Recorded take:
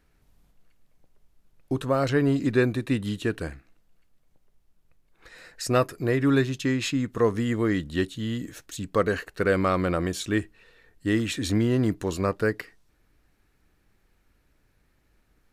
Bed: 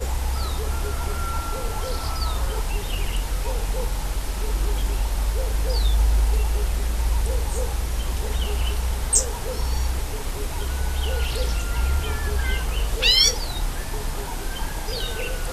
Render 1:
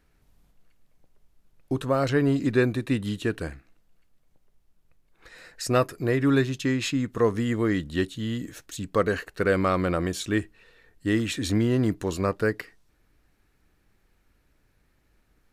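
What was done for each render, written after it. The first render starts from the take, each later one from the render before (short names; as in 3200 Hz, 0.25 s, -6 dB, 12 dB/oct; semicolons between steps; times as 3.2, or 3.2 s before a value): nothing audible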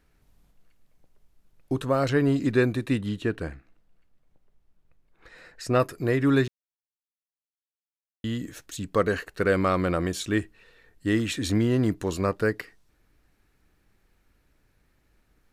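3.01–5.8 high shelf 4300 Hz -10 dB; 6.48–8.24 mute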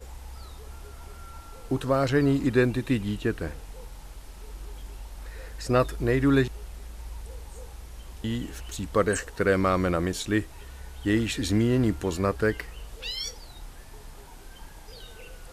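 add bed -17 dB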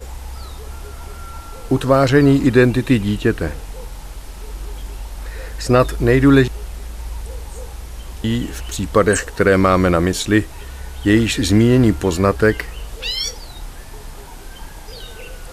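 gain +10.5 dB; limiter -2 dBFS, peak gain reduction 3 dB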